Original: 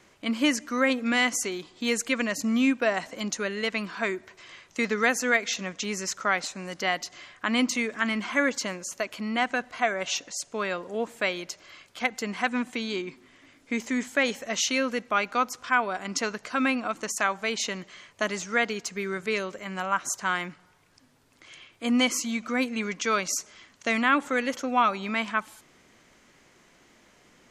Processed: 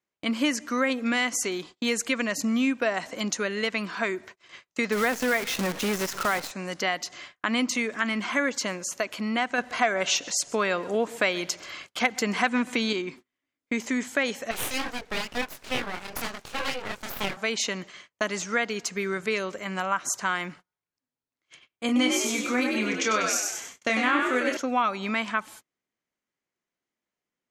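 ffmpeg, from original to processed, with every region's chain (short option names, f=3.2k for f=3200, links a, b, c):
-filter_complex "[0:a]asettb=1/sr,asplit=3[a][b][c];[a]atrim=end=4.924[d];[b]atrim=start=4.92:end=6.51,asetpts=PTS-STARTPTS,afade=t=in:d=0.004:c=qsin,afade=t=out:st=1.586:d=0.004:c=qsin,aeval=exprs='val(0)+0.5*0.0376*sgn(val(0))':c=same,lowpass=f=2.2k:p=1,acrusher=bits=6:dc=4:mix=0:aa=0.000001[e];[c]atrim=start=6.506[f];[d][e]acrossfade=d=0.004:c1=hsin:c2=qsin[g];[g][f]acrossfade=d=0.004:c1=qsin:c2=hsin,asettb=1/sr,asplit=3[h][i][j];[h]atrim=end=9.584[k];[i]atrim=start=9.58:end=12.93,asetpts=PTS-STARTPTS,afade=t=in:d=0.004:c=qsin,afade=t=out:st=3.346:d=0.004:c=qsin,acontrast=41,aecho=1:1:131:0.075,atrim=end_sample=147735[l];[j]atrim=start=12.926[m];[k][l]acrossfade=d=0.004:c1=hsin:c2=qsin[n];[n][m]acrossfade=d=0.004:c1=qsin:c2=hsin,asettb=1/sr,asplit=3[o][p][q];[o]atrim=end=14.514[r];[p]atrim=start=14.51:end=17.37,asetpts=PTS-STARTPTS,afade=t=in:d=0.004:c=qsin,afade=t=out:st=2.856:d=0.004:c=qsin,bandreject=f=60:t=h:w=6,bandreject=f=120:t=h:w=6,bandreject=f=180:t=h:w=6,bandreject=f=240:t=h:w=6,bandreject=f=300:t=h:w=6,flanger=delay=20:depth=7.7:speed=2.2,aeval=exprs='abs(val(0))':c=same[s];[q]atrim=start=17.366[t];[r][s]acrossfade=d=0.004:c1=hsin:c2=qsin[u];[u][t]acrossfade=d=0.004:c1=qsin:c2=hsin,asettb=1/sr,asplit=3[v][w][x];[v]atrim=end=21.864[y];[w]atrim=start=21.86:end=24.57,asetpts=PTS-STARTPTS,afade=t=in:d=0.004:c=qsin,afade=t=out:st=2.706:d=0.004:c=qsin,asplit=2[z][aa];[aa]adelay=28,volume=-5dB[ab];[z][ab]amix=inputs=2:normalize=0,atrim=end_sample=119511,asplit=6[ac][ad][ae][af][ag][ah];[ad]adelay=97,afreqshift=60,volume=-4.5dB[ai];[ae]adelay=194,afreqshift=120,volume=-11.6dB[aj];[af]adelay=291,afreqshift=180,volume=-18.8dB[ak];[ag]adelay=388,afreqshift=240,volume=-25.9dB[al];[ah]adelay=485,afreqshift=300,volume=-33dB[am];[ac][ai][aj][ak][al][am]amix=inputs=6:normalize=0,atrim=end_sample=119511[an];[x]atrim=start=24.566[ao];[y][an]acrossfade=d=0.004:c1=hsin:c2=qsin[ap];[ap][ao]acrossfade=d=0.004:c1=qsin:c2=hsin,agate=range=-34dB:threshold=-46dB:ratio=16:detection=peak,lowshelf=f=70:g=-8.5,acompressor=threshold=-28dB:ratio=2,volume=3.5dB"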